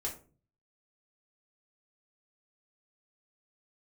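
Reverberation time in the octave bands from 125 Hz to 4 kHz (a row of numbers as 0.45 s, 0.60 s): 0.80 s, 0.55 s, 0.45 s, 0.35 s, 0.25 s, 0.20 s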